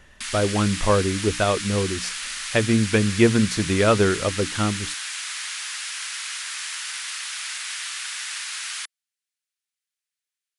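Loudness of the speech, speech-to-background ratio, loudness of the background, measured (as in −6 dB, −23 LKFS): −22.0 LKFS, 7.0 dB, −29.0 LKFS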